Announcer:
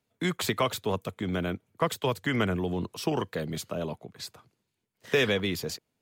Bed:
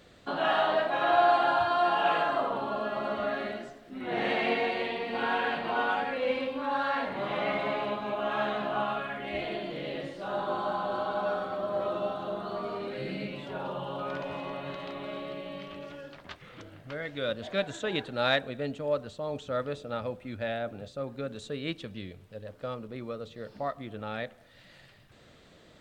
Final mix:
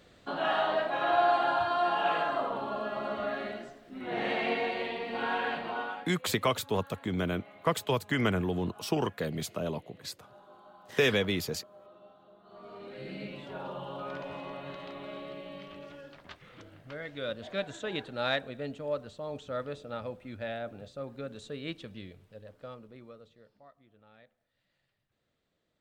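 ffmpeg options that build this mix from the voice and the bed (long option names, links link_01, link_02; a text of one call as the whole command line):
ffmpeg -i stem1.wav -i stem2.wav -filter_complex "[0:a]adelay=5850,volume=-1dB[link_01];[1:a]volume=17dB,afade=type=out:start_time=5.55:duration=0.6:silence=0.0891251,afade=type=in:start_time=12.43:duration=0.86:silence=0.105925,afade=type=out:start_time=21.96:duration=1.64:silence=0.105925[link_02];[link_01][link_02]amix=inputs=2:normalize=0" out.wav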